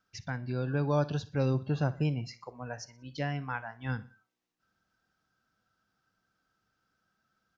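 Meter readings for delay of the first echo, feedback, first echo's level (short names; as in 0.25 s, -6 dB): 61 ms, 44%, -19.5 dB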